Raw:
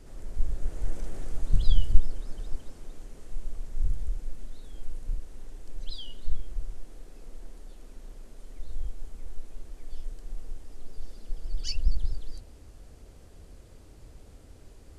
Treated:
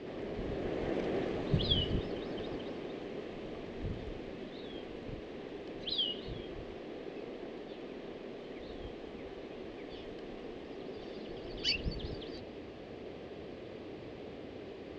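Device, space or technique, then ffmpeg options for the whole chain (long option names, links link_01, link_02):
kitchen radio: -af "highpass=220,equalizer=frequency=390:width_type=q:width=4:gain=4,equalizer=frequency=920:width_type=q:width=4:gain=-5,equalizer=frequency=1400:width_type=q:width=4:gain=-9,lowpass=frequency=3500:width=0.5412,lowpass=frequency=3500:width=1.3066,volume=13dB"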